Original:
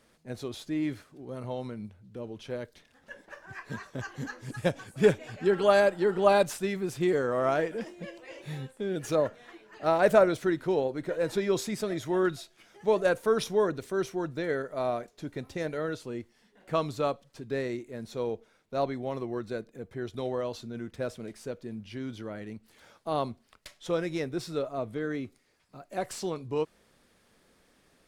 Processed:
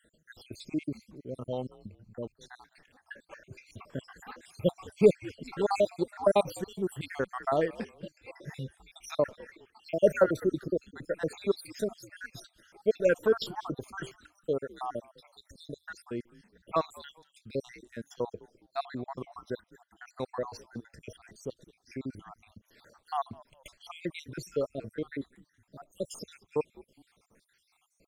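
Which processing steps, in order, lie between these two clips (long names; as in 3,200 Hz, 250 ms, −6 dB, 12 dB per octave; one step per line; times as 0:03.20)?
time-frequency cells dropped at random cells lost 72%
echo with shifted repeats 206 ms, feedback 35%, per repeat −86 Hz, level −22 dB
level +1.5 dB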